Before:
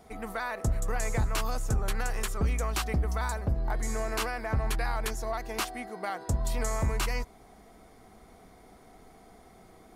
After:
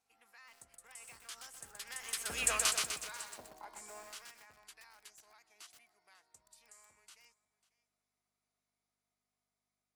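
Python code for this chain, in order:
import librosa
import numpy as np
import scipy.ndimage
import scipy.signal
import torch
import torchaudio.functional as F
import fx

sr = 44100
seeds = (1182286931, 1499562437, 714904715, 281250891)

p1 = fx.doppler_pass(x, sr, speed_mps=16, closest_m=1.5, pass_at_s=2.47)
p2 = p1 + fx.echo_single(p1, sr, ms=545, db=-20.5, dry=0)
p3 = fx.spec_box(p2, sr, start_s=3.37, length_s=0.71, low_hz=210.0, high_hz=1100.0, gain_db=10)
p4 = fx.add_hum(p3, sr, base_hz=50, snr_db=34)
p5 = fx.weighting(p4, sr, curve='ITU-R 468')
p6 = fx.formant_shift(p5, sr, semitones=2)
y = fx.echo_crushed(p6, sr, ms=125, feedback_pct=55, bits=9, wet_db=-3)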